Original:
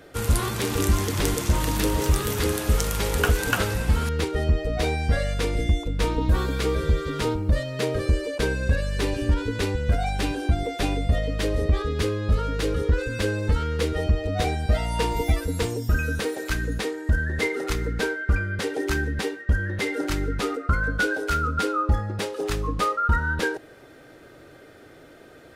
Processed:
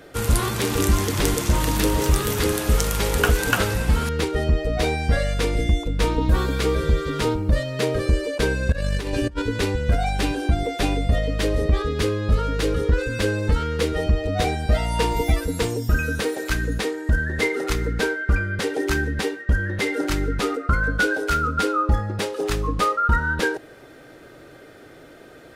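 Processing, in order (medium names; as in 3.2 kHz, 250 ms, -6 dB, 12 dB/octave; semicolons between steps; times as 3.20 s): peaking EQ 84 Hz -7.5 dB 0.21 oct; 8.72–9.42 s: compressor with a negative ratio -27 dBFS, ratio -0.5; trim +3 dB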